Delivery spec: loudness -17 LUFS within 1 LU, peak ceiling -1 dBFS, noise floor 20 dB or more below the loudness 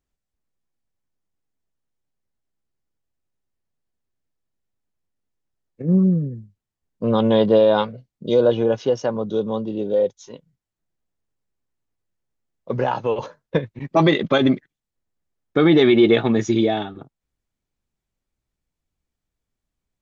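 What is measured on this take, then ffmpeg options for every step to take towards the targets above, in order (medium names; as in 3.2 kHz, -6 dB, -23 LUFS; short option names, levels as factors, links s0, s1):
loudness -19.5 LUFS; peak level -4.0 dBFS; loudness target -17.0 LUFS
-> -af "volume=1.33"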